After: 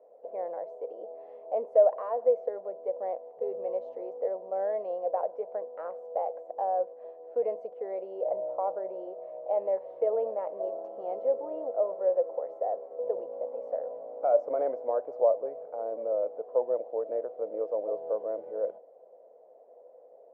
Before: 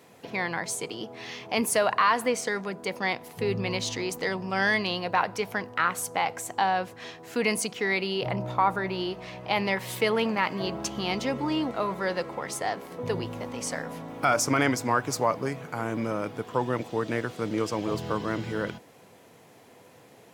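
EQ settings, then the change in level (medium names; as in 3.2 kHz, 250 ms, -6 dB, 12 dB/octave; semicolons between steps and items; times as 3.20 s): Butterworth band-pass 570 Hz, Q 3.1; +6.0 dB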